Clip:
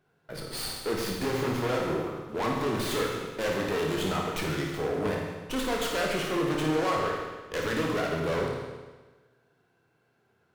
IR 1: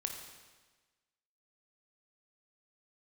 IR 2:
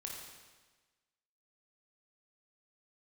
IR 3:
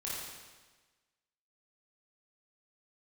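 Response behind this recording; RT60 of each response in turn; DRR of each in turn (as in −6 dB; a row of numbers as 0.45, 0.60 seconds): 2; 1.3, 1.3, 1.3 seconds; 3.0, −1.5, −7.5 decibels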